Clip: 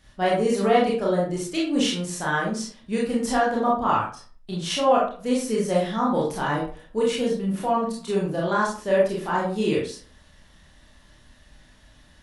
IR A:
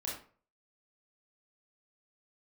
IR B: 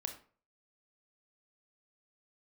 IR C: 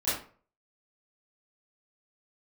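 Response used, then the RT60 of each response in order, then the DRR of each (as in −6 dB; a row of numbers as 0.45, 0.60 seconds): A; 0.45, 0.45, 0.45 seconds; −5.0, 5.0, −14.5 decibels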